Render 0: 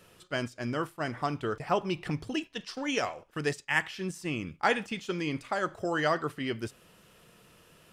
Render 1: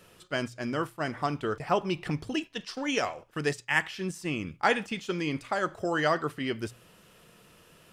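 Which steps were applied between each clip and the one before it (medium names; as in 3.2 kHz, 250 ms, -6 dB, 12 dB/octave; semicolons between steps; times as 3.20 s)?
hum notches 60/120 Hz; trim +1.5 dB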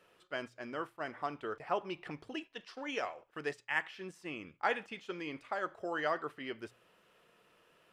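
tone controls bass -13 dB, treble -11 dB; trim -7 dB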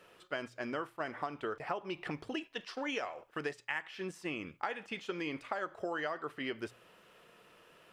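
compression 12:1, threshold -39 dBFS, peak gain reduction 13.5 dB; trim +6 dB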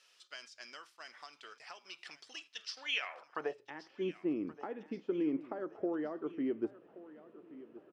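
band-pass sweep 5.4 kHz -> 300 Hz, 2.75–3.74 s; feedback delay 1126 ms, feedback 39%, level -17.5 dB; trim +8.5 dB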